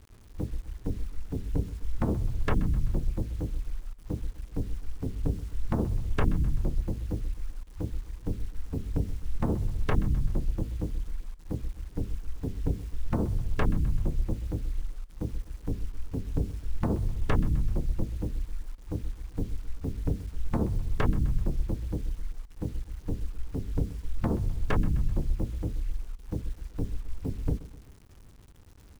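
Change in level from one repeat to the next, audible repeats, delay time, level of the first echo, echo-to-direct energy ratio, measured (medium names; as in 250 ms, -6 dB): -5.5 dB, 3, 128 ms, -17.0 dB, -15.5 dB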